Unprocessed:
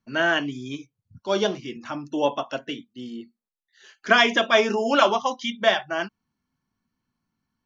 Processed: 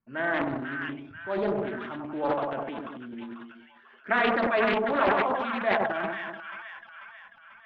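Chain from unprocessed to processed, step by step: low-pass 2.2 kHz 24 dB/octave; two-band feedback delay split 1.2 kHz, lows 98 ms, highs 491 ms, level -4.5 dB; transient shaper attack -2 dB, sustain +11 dB; loudspeaker Doppler distortion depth 0.41 ms; trim -6.5 dB

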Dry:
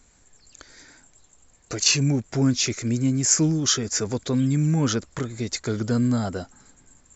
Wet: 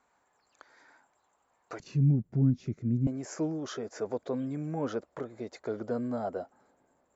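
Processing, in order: band-pass filter 930 Hz, Q 1.8, from 1.80 s 160 Hz, from 3.07 s 620 Hz

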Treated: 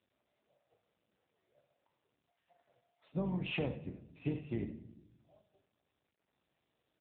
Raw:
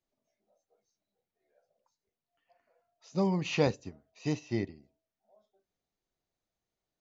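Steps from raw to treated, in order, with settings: octave divider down 2 oct, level +1 dB; compression 16:1, threshold -29 dBFS, peak gain reduction 10.5 dB; on a send: delay 76 ms -11.5 dB; on the sum: simulated room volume 280 m³, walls mixed, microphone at 0.31 m; trim -1.5 dB; AMR-NB 7.95 kbps 8 kHz

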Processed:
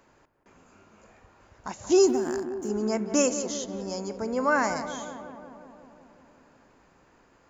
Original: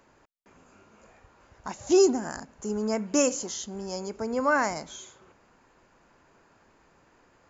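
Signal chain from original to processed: 2.07–2.69 s: companding laws mixed up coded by A; on a send: filtered feedback delay 180 ms, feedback 74%, low-pass 1.8 kHz, level -10 dB

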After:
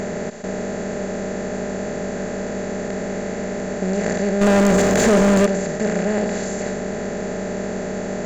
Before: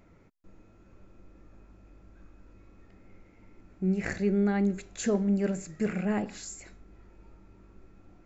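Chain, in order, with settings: spectral levelling over time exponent 0.2; peaking EQ 590 Hz +10.5 dB 0.28 oct; 4.41–5.46 s: waveshaping leveller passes 3

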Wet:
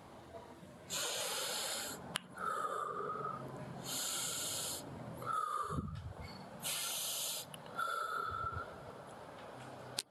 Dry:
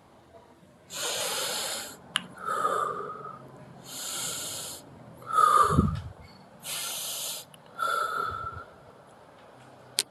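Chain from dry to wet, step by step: compression 12:1, threshold -37 dBFS, peak gain reduction 22 dB; trim +1 dB

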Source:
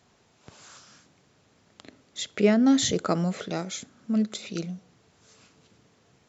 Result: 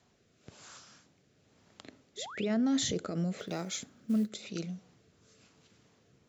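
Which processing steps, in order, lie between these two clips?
peak limiter -20 dBFS, peak gain reduction 11 dB; rotary cabinet horn 1 Hz; 2.17–2.46 s: painted sound rise 370–4100 Hz -43 dBFS; 3.38–4.30 s: short-mantissa float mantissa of 4-bit; trim -2 dB

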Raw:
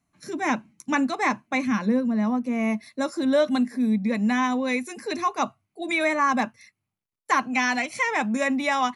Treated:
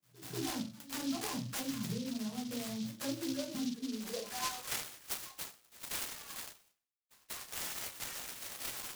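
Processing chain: rattle on loud lows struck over -35 dBFS, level -20 dBFS; phase dispersion lows, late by 65 ms, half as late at 550 Hz; level held to a coarse grid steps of 16 dB; reverb removal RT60 1.5 s; high-pass sweep 110 Hz -> 3.5 kHz, 3.44–5.10 s; dynamic bell 900 Hz, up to -6 dB, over -47 dBFS, Q 1.2; reverse echo 192 ms -23 dB; compression 2:1, threshold -40 dBFS, peak gain reduction 8 dB; peaking EQ 120 Hz +14 dB 0.26 oct; de-hum 112.2 Hz, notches 39; reverberation RT60 0.30 s, pre-delay 5 ms, DRR -4.5 dB; delay time shaken by noise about 4.3 kHz, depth 0.14 ms; trim -4.5 dB

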